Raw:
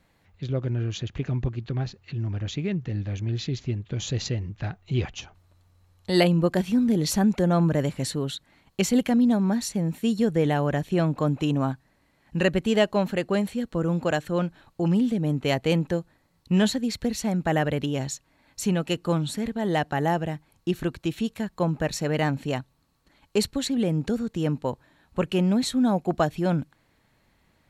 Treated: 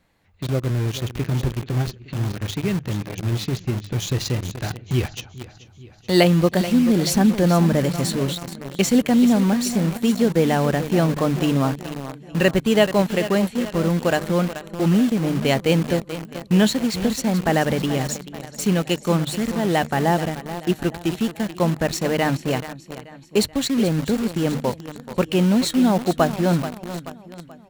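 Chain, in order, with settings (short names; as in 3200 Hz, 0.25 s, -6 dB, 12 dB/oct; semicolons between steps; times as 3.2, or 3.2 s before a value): notches 50/100/150 Hz; feedback echo 0.432 s, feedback 56%, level -12.5 dB; in parallel at -3 dB: bit-crush 5-bit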